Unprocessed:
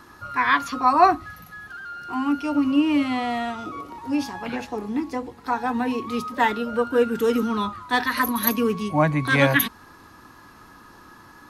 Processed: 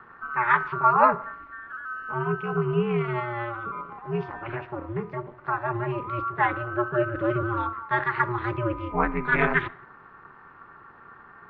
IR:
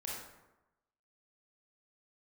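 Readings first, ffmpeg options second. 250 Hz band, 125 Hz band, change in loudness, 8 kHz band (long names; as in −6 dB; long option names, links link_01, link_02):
−9.0 dB, +0.5 dB, −3.5 dB, below −40 dB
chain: -filter_complex "[0:a]highpass=frequency=140:width=0.5412,highpass=frequency=140:width=1.3066,equalizer=frequency=190:width_type=q:width=4:gain=-4,equalizer=frequency=340:width_type=q:width=4:gain=-3,equalizer=frequency=610:width_type=q:width=4:gain=-8,equalizer=frequency=1300:width_type=q:width=4:gain=7,lowpass=frequency=2300:width=0.5412,lowpass=frequency=2300:width=1.3066,asplit=2[link_01][link_02];[1:a]atrim=start_sample=2205,afade=type=out:start_time=0.32:duration=0.01,atrim=end_sample=14553,adelay=23[link_03];[link_02][link_03]afir=irnorm=-1:irlink=0,volume=-19.5dB[link_04];[link_01][link_04]amix=inputs=2:normalize=0,aeval=exprs='val(0)*sin(2*PI*120*n/s)':channel_layout=same"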